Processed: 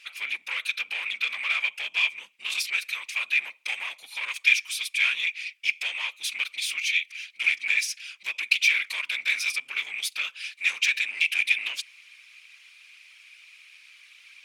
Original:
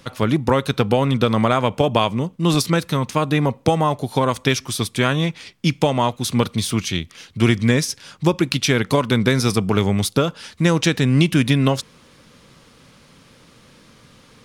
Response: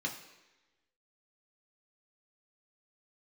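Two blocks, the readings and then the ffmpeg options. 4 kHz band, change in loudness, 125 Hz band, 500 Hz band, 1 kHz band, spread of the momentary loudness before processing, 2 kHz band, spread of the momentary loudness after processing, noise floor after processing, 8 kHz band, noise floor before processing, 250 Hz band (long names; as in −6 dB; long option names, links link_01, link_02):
−3.0 dB, −6.5 dB, below −40 dB, below −35 dB, −22.0 dB, 5 LU, +3.5 dB, 10 LU, −56 dBFS, −6.5 dB, −51 dBFS, below −40 dB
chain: -af "afftfilt=real='hypot(re,im)*cos(2*PI*random(0))':imag='hypot(re,im)*sin(2*PI*random(1))':win_size=512:overlap=0.75,asoftclip=type=tanh:threshold=-22.5dB,highpass=frequency=2400:width_type=q:width=8.6"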